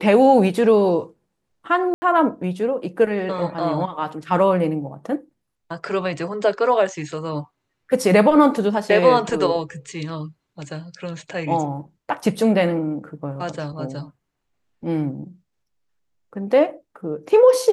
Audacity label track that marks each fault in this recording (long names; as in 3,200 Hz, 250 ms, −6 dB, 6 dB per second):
1.940000	2.020000	drop-out 80 ms